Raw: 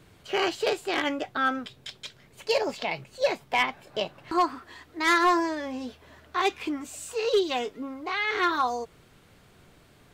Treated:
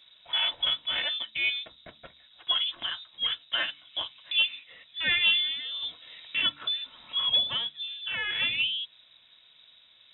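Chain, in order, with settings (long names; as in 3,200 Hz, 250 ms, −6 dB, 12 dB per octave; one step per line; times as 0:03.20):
high-shelf EQ 2,800 Hz −10 dB
voice inversion scrambler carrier 3,800 Hz
notch comb filter 400 Hz
hum removal 72.71 Hz, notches 4
0:05.82–0:07.52: multiband upward and downward compressor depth 40%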